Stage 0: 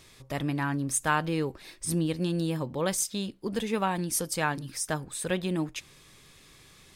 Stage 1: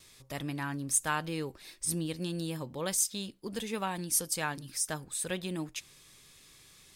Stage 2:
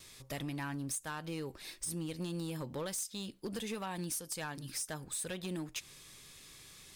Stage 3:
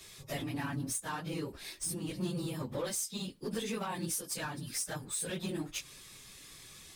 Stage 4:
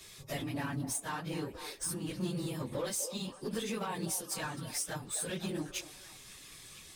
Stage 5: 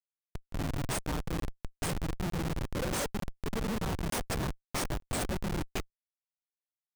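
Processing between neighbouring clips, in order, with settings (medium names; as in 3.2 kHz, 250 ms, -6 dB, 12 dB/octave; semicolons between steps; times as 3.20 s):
gate with hold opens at -47 dBFS; treble shelf 3.2 kHz +9 dB; trim -7 dB
compression 8:1, threshold -37 dBFS, peak gain reduction 14.5 dB; overload inside the chain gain 35.5 dB; trim +2.5 dB
phase randomisation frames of 50 ms; trim +2.5 dB
repeats whose band climbs or falls 252 ms, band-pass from 580 Hz, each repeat 0.7 oct, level -7 dB
level rider gain up to 8 dB; Schmitt trigger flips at -24.5 dBFS; crackling interface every 0.90 s, samples 1024, zero, from 0.50 s; trim -1 dB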